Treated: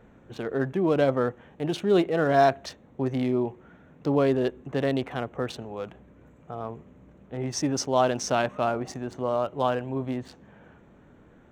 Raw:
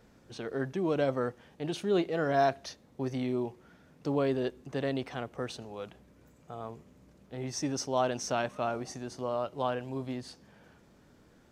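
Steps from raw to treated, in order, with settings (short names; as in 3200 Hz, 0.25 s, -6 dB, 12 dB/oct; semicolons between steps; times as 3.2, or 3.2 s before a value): Wiener smoothing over 9 samples; gain +6.5 dB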